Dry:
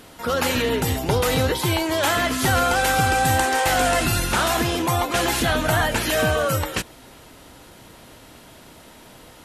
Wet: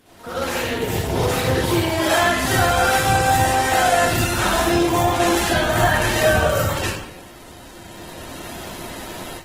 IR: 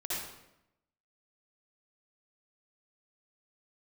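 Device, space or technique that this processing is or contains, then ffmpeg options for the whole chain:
speakerphone in a meeting room: -filter_complex "[0:a]asplit=3[a][b][c];[a]afade=t=out:st=1.14:d=0.02[d];[b]highpass=62,afade=t=in:st=1.14:d=0.02,afade=t=out:st=1.97:d=0.02[e];[c]afade=t=in:st=1.97:d=0.02[f];[d][e][f]amix=inputs=3:normalize=0[g];[1:a]atrim=start_sample=2205[h];[g][h]afir=irnorm=-1:irlink=0,dynaudnorm=f=780:g=3:m=14dB,volume=-4dB" -ar 48000 -c:a libopus -b:a 16k

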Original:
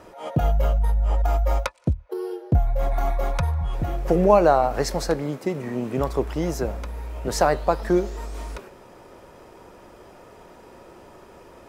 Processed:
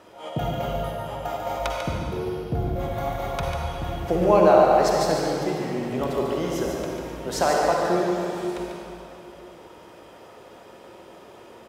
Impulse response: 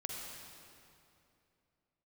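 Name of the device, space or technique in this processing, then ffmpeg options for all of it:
PA in a hall: -filter_complex "[0:a]highpass=f=180:p=1,equalizer=f=3.3k:t=o:w=0.55:g=6,aecho=1:1:145:0.501[a];[1:a]atrim=start_sample=2205[b];[a][b]afir=irnorm=-1:irlink=0"

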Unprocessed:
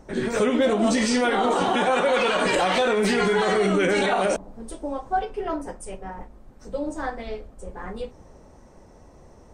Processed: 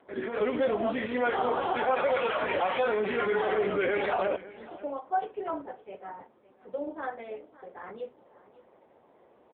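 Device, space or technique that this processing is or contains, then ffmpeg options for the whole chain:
satellite phone: -af "highpass=340,lowpass=3.4k,aecho=1:1:557:0.112,volume=-3.5dB" -ar 8000 -c:a libopencore_amrnb -b:a 6700

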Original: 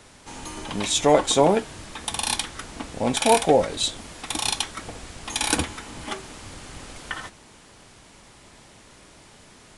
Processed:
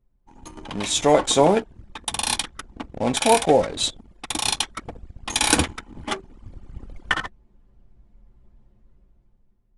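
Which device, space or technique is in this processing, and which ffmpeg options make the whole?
voice memo with heavy noise removal: -af "anlmdn=10,dynaudnorm=f=330:g=7:m=14dB,volume=-1dB"

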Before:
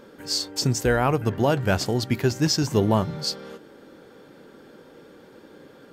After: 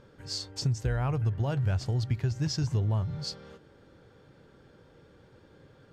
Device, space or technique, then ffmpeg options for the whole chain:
jukebox: -af "lowpass=7.9k,lowshelf=f=160:t=q:w=1.5:g=12.5,acompressor=threshold=-16dB:ratio=4,volume=-9dB"

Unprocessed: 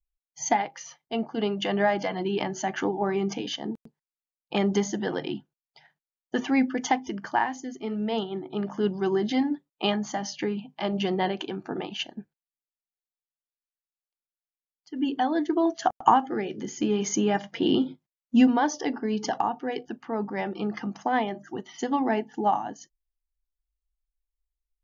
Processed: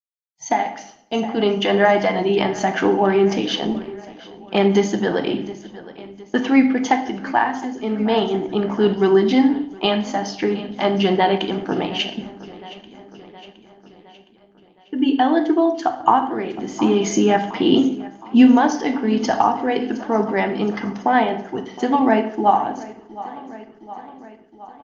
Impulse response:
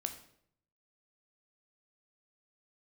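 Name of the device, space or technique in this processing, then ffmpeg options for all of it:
far-field microphone of a smart speaker: -filter_complex "[0:a]lowpass=5.8k,agate=range=-33dB:threshold=-40dB:ratio=3:detection=peak,aecho=1:1:715|1430|2145|2860|3575:0.112|0.0651|0.0377|0.0219|0.0127[a];[1:a]atrim=start_sample=2205[b];[a][b]afir=irnorm=-1:irlink=0,highpass=f=87:p=1,dynaudnorm=f=120:g=9:m=14dB,volume=-1dB" -ar 48000 -c:a libopus -b:a 20k

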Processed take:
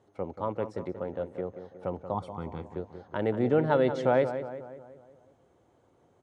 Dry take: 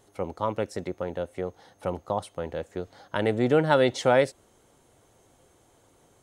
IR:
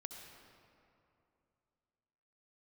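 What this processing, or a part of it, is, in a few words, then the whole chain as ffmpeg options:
through cloth: -filter_complex "[0:a]highpass=79,asettb=1/sr,asplit=3[a][b][c];[a]atrim=end=2.144[d];[b]atrim=start=2.14:end=2.63,asetpts=PTS-STARTPTS,afade=t=in:d=0.004:c=qsin,afade=t=out:st=0.486:d=0.004:c=qsin,aecho=1:1:0.9:0.87,atrim=end_sample=21609[e];[c]atrim=start=2.626[f];[d][e]acrossfade=d=0.004:c1=hsin:c2=qsin[g];[g][f]acrossfade=d=0.004:c1=qsin:c2=hsin,lowpass=7.4k,highshelf=f=2.2k:g=-14,asplit=2[h][i];[i]adelay=182,lowpass=f=2.6k:p=1,volume=-10dB,asplit=2[j][k];[k]adelay=182,lowpass=f=2.6k:p=1,volume=0.53,asplit=2[l][m];[m]adelay=182,lowpass=f=2.6k:p=1,volume=0.53,asplit=2[n][o];[o]adelay=182,lowpass=f=2.6k:p=1,volume=0.53,asplit=2[p][q];[q]adelay=182,lowpass=f=2.6k:p=1,volume=0.53,asplit=2[r][s];[s]adelay=182,lowpass=f=2.6k:p=1,volume=0.53[t];[h][j][l][n][p][r][t]amix=inputs=7:normalize=0,volume=-2.5dB"

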